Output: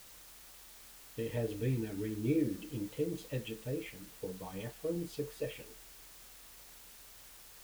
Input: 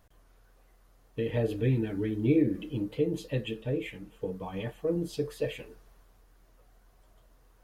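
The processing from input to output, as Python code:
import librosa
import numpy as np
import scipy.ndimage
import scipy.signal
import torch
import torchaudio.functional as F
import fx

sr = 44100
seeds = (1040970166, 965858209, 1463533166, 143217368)

y = fx.quant_dither(x, sr, seeds[0], bits=8, dither='triangular')
y = y * librosa.db_to_amplitude(-7.0)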